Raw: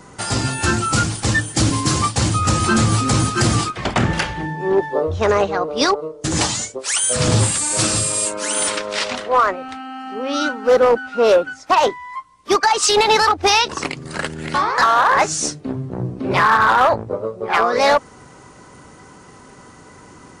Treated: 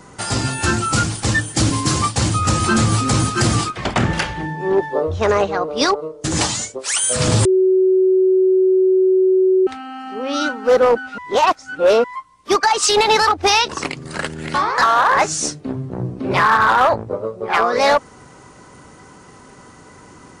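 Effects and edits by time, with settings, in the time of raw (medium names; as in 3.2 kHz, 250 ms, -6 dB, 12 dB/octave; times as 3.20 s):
7.45–9.67 s: bleep 375 Hz -10.5 dBFS
11.18–12.04 s: reverse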